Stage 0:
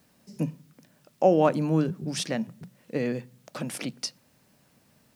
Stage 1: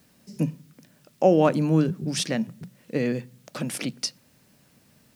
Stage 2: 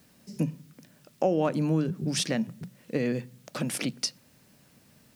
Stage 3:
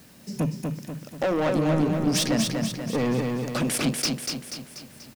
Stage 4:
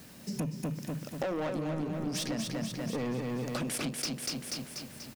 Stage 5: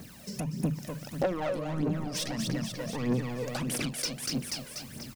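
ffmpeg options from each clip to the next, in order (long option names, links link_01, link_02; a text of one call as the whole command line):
ffmpeg -i in.wav -af "equalizer=frequency=830:width=0.91:gain=-4,volume=4dB" out.wav
ffmpeg -i in.wav -af "acompressor=threshold=-24dB:ratio=2.5" out.wav
ffmpeg -i in.wav -af "asoftclip=type=tanh:threshold=-29dB,aecho=1:1:242|484|726|968|1210|1452|1694:0.631|0.322|0.164|0.0837|0.0427|0.0218|0.0111,volume=8.5dB" out.wav
ffmpeg -i in.wav -af "acompressor=threshold=-32dB:ratio=6" out.wav
ffmpeg -i in.wav -af "aphaser=in_gain=1:out_gain=1:delay=2.1:decay=0.61:speed=1.6:type=triangular" out.wav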